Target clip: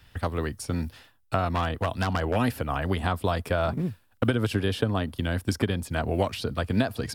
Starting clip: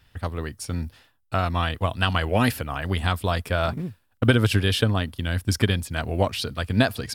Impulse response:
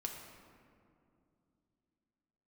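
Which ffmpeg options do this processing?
-filter_complex "[0:a]acrossover=split=180|1200[link_01][link_02][link_03];[link_01]acompressor=threshold=-34dB:ratio=4[link_04];[link_02]acompressor=threshold=-27dB:ratio=4[link_05];[link_03]acompressor=threshold=-40dB:ratio=4[link_06];[link_04][link_05][link_06]amix=inputs=3:normalize=0,asplit=3[link_07][link_08][link_09];[link_07]afade=type=out:start_time=1.49:duration=0.02[link_10];[link_08]aeval=exprs='0.0891*(abs(mod(val(0)/0.0891+3,4)-2)-1)':channel_layout=same,afade=type=in:start_time=1.49:duration=0.02,afade=type=out:start_time=2.35:duration=0.02[link_11];[link_09]afade=type=in:start_time=2.35:duration=0.02[link_12];[link_10][link_11][link_12]amix=inputs=3:normalize=0,volume=3.5dB"

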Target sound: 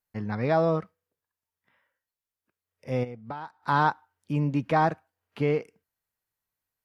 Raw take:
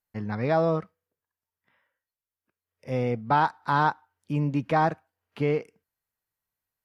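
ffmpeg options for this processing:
ffmpeg -i in.wav -filter_complex "[0:a]asplit=3[link_01][link_02][link_03];[link_01]afade=type=out:start_time=3.03:duration=0.02[link_04];[link_02]acompressor=threshold=-35dB:ratio=8,afade=type=in:start_time=3.03:duration=0.02,afade=type=out:start_time=3.62:duration=0.02[link_05];[link_03]afade=type=in:start_time=3.62:duration=0.02[link_06];[link_04][link_05][link_06]amix=inputs=3:normalize=0" out.wav

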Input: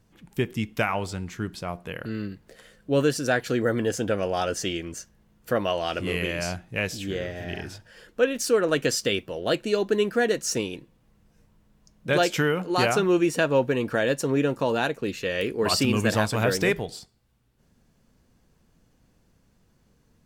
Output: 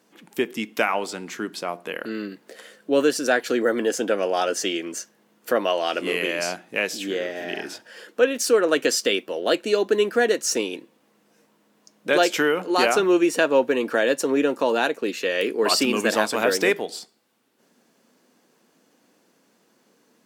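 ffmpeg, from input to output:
ffmpeg -i in.wav -filter_complex "[0:a]highpass=frequency=250:width=0.5412,highpass=frequency=250:width=1.3066,asplit=2[link_01][link_02];[link_02]acompressor=threshold=-37dB:ratio=6,volume=-3dB[link_03];[link_01][link_03]amix=inputs=2:normalize=0,volume=2.5dB" out.wav

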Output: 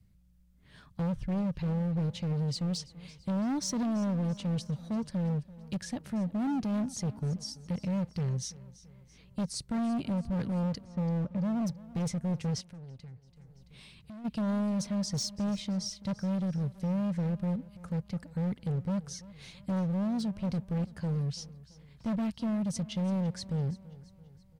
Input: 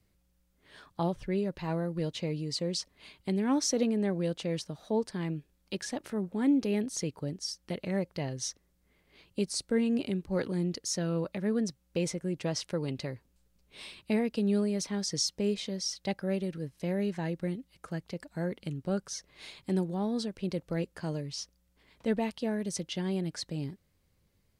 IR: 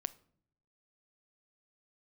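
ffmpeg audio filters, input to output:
-filter_complex "[0:a]asettb=1/sr,asplit=3[link_01][link_02][link_03];[link_01]atrim=end=10.844[link_04];[link_02]atrim=start=10.84:end=11.62,asetpts=PTS-STARTPTS,afade=type=in:duration=0.004:curve=qsin,afade=type=out:start_time=0.776:duration=0.004:curve=qsin,lowpass=1100[link_05];[link_03]atrim=start=11.616[link_06];[link_04][link_05]acrossfade=duration=0.004:curve1=hsin:curve2=qsin[link_07];[link_07][link_06]acrossfade=duration=0.004:curve1=qsin:curve2=hsin,lowshelf=frequency=250:width_type=q:width=1.5:gain=12,asoftclip=type=hard:threshold=-24.5dB,aecho=1:1:335|670|1005|1340:0.112|0.0561|0.0281|0.014,asplit=3[link_08][link_09][link_10];[link_08]afade=type=out:start_time=12.6:duration=0.02[link_11];[link_09]acompressor=threshold=-47dB:ratio=3,afade=type=in:start_time=12.6:duration=0.02,afade=type=out:start_time=14.24:duration=0.02[link_12];[link_10]afade=type=in:start_time=14.24:duration=0.02[link_13];[link_11][link_12][link_13]amix=inputs=3:normalize=0,volume=-4dB"

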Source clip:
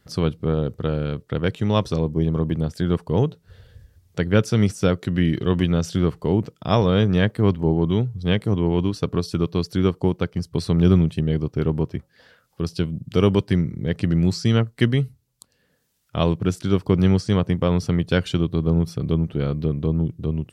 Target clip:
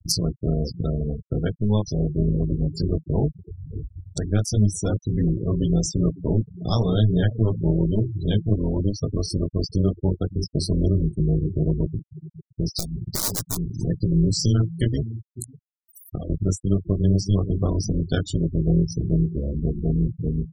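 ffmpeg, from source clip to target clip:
ffmpeg -i in.wav -filter_complex "[0:a]asettb=1/sr,asplit=3[link_01][link_02][link_03];[link_01]atrim=end=12.784[link_04];[link_02]atrim=start=12.78:end=13.57,asetpts=PTS-STARTPTS,afade=type=in:duration=0.004:curve=qsin,afade=type=out:start_time=0.786:duration=0.004:curve=qsin,aeval=exprs='(mod(5.31*val(0)+1,2)-1)/5.31':channel_layout=same[link_05];[link_03]atrim=start=13.566[link_06];[link_04][link_05]acrossfade=duration=0.004:curve1=hsin:curve2=qsin[link_07];[link_07][link_06]acrossfade=duration=0.004:curve1=qsin:curve2=hsin,adynamicequalizer=threshold=0.00282:dfrequency=4500:dqfactor=3.1:tfrequency=4500:tqfactor=3.1:attack=5:release=100:ratio=0.375:range=2:mode=cutabove:tftype=bell,asplit=3[link_08][link_09][link_10];[link_08]afade=type=out:start_time=15:duration=0.02[link_11];[link_09]acompressor=threshold=-32dB:ratio=5,afade=type=in:start_time=15:duration=0.02,afade=type=out:start_time=16.29:duration=0.02[link_12];[link_10]afade=type=in:start_time=16.29:duration=0.02[link_13];[link_11][link_12][link_13]amix=inputs=3:normalize=0,tremolo=f=210:d=0.788,flanger=delay=17.5:depth=2.9:speed=0.15,acompressor=mode=upward:threshold=-25dB:ratio=2.5,asettb=1/sr,asplit=3[link_14][link_15][link_16];[link_14]atrim=end=4.694[link_17];[link_15]atrim=start=4.69:end=5.56,asetpts=PTS-STARTPTS,afade=type=in:duration=0.004:curve=qsin,afade=type=out:start_time=0.866:duration=0.004:curve=qsin,asoftclip=type=hard:threshold=-20dB[link_18];[link_16]atrim=start=5.556[link_19];[link_17][link_18]acrossfade=duration=0.004:curve1=hsin:curve2=qsin[link_20];[link_20][link_19]acrossfade=duration=0.004:curve1=qsin:curve2=hsin,aecho=1:1:555|1110:0.178|0.0285,aexciter=amount=5.6:drive=6.4:freq=4000,afftfilt=real='re*gte(hypot(re,im),0.0562)':imag='im*gte(hypot(re,im),0.0562)':win_size=1024:overlap=0.75,lowshelf=frequency=200:gain=9.5,alimiter=limit=-9.5dB:level=0:latency=1:release=258" out.wav

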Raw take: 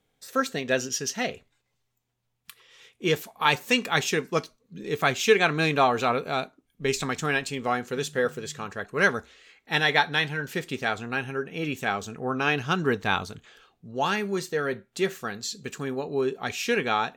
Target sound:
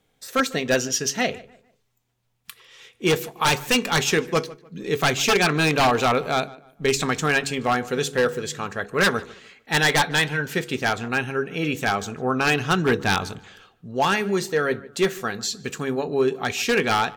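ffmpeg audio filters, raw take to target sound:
ffmpeg -i in.wav -filter_complex "[0:a]bandreject=frequency=69.44:width_type=h:width=4,bandreject=frequency=138.88:width_type=h:width=4,bandreject=frequency=208.32:width_type=h:width=4,bandreject=frequency=277.76:width_type=h:width=4,bandreject=frequency=347.2:width_type=h:width=4,bandreject=frequency=416.64:width_type=h:width=4,bandreject=frequency=486.08:width_type=h:width=4,aeval=exprs='0.133*(abs(mod(val(0)/0.133+3,4)-2)-1)':channel_layout=same,asplit=2[link_01][link_02];[link_02]adelay=149,lowpass=frequency=2600:poles=1,volume=-20dB,asplit=2[link_03][link_04];[link_04]adelay=149,lowpass=frequency=2600:poles=1,volume=0.34,asplit=2[link_05][link_06];[link_06]adelay=149,lowpass=frequency=2600:poles=1,volume=0.34[link_07];[link_03][link_05][link_07]amix=inputs=3:normalize=0[link_08];[link_01][link_08]amix=inputs=2:normalize=0,volume=5.5dB" out.wav

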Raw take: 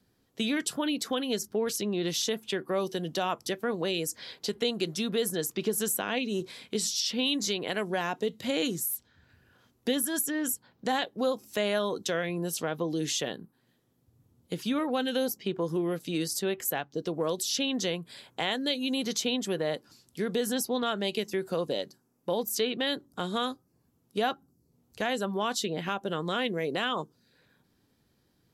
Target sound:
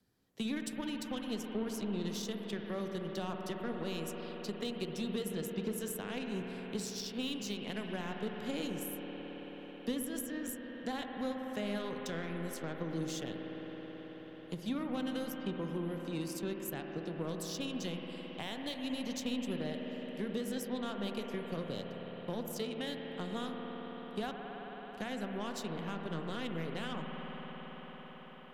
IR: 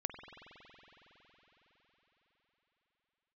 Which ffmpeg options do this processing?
-filter_complex "[0:a]aeval=exprs='0.168*(cos(1*acos(clip(val(0)/0.168,-1,1)))-cos(1*PI/2))+0.00237*(cos(2*acos(clip(val(0)/0.168,-1,1)))-cos(2*PI/2))+0.00106*(cos(6*acos(clip(val(0)/0.168,-1,1)))-cos(6*PI/2))+0.0119*(cos(7*acos(clip(val(0)/0.168,-1,1)))-cos(7*PI/2))':channel_layout=same[link_01];[1:a]atrim=start_sample=2205,asetrate=37485,aresample=44100[link_02];[link_01][link_02]afir=irnorm=-1:irlink=0,acrossover=split=230[link_03][link_04];[link_04]acompressor=threshold=-59dB:ratio=1.5[link_05];[link_03][link_05]amix=inputs=2:normalize=0"

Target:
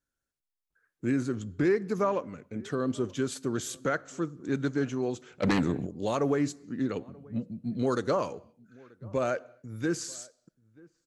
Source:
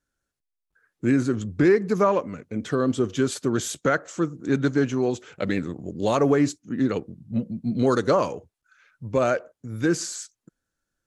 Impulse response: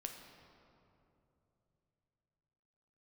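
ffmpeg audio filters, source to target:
-filter_complex "[0:a]asplit=2[link_01][link_02];[link_02]adelay=932.9,volume=-25dB,highshelf=frequency=4000:gain=-21[link_03];[link_01][link_03]amix=inputs=2:normalize=0,asplit=2[link_04][link_05];[1:a]atrim=start_sample=2205,afade=type=out:start_time=0.33:duration=0.01,atrim=end_sample=14994,highshelf=frequency=5000:gain=11[link_06];[link_05][link_06]afir=irnorm=-1:irlink=0,volume=-16dB[link_07];[link_04][link_07]amix=inputs=2:normalize=0,asplit=3[link_08][link_09][link_10];[link_08]afade=type=out:start_time=5.42:duration=0.02[link_11];[link_09]aeval=exprs='0.282*sin(PI/2*2.51*val(0)/0.282)':channel_layout=same,afade=type=in:start_time=5.42:duration=0.02,afade=type=out:start_time=5.85:duration=0.02[link_12];[link_10]afade=type=in:start_time=5.85:duration=0.02[link_13];[link_11][link_12][link_13]amix=inputs=3:normalize=0,volume=-8dB"

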